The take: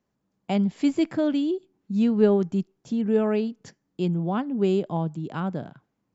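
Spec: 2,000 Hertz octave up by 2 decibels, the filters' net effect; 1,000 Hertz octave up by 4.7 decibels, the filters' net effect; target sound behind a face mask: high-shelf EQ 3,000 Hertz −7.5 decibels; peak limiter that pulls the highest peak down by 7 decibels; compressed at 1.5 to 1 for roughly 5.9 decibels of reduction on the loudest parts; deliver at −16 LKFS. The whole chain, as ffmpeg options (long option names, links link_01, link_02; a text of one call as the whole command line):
ffmpeg -i in.wav -af "equalizer=frequency=1000:width_type=o:gain=6.5,equalizer=frequency=2000:width_type=o:gain=3,acompressor=threshold=-29dB:ratio=1.5,alimiter=limit=-20dB:level=0:latency=1,highshelf=frequency=3000:gain=-7.5,volume=14dB" out.wav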